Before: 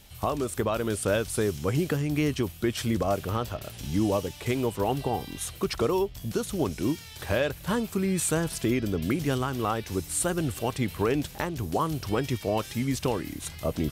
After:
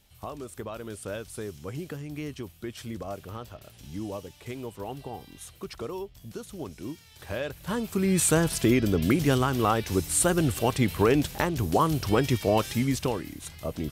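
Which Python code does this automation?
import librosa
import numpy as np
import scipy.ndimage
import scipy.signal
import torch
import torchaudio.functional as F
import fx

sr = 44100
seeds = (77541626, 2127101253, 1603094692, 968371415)

y = fx.gain(x, sr, db=fx.line((7.04, -10.0), (7.73, -3.0), (8.18, 4.0), (12.71, 4.0), (13.33, -4.0)))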